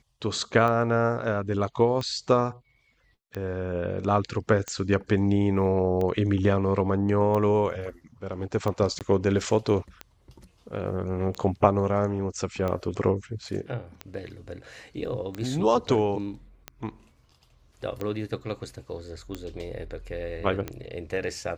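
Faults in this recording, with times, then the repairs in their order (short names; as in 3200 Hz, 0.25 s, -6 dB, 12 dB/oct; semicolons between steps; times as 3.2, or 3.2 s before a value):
tick 45 rpm -18 dBFS
8.99–9.01 gap 18 ms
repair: de-click; interpolate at 8.99, 18 ms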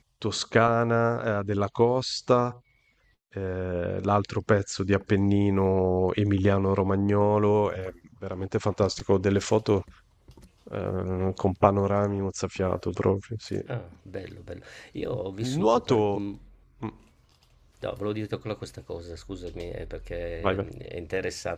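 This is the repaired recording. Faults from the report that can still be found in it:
none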